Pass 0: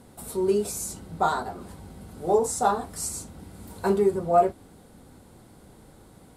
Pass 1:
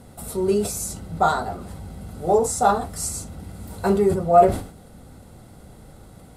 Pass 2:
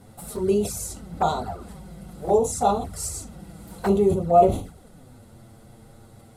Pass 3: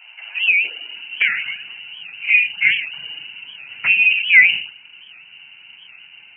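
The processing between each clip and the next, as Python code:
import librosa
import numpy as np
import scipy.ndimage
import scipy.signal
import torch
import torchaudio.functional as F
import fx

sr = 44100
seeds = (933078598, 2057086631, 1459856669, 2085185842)

y1 = fx.low_shelf(x, sr, hz=260.0, db=4.0)
y1 = y1 + 0.3 * np.pad(y1, (int(1.5 * sr / 1000.0), 0))[:len(y1)]
y1 = fx.sustainer(y1, sr, db_per_s=110.0)
y1 = y1 * 10.0 ** (3.0 / 20.0)
y2 = fx.env_flanger(y1, sr, rest_ms=11.2, full_db=-17.5)
y3 = fx.freq_invert(y2, sr, carrier_hz=2900)
y3 = fx.filter_sweep_highpass(y3, sr, from_hz=730.0, to_hz=120.0, start_s=0.4, end_s=1.51, q=2.1)
y3 = fx.record_warp(y3, sr, rpm=78.0, depth_cents=160.0)
y3 = y3 * 10.0 ** (4.5 / 20.0)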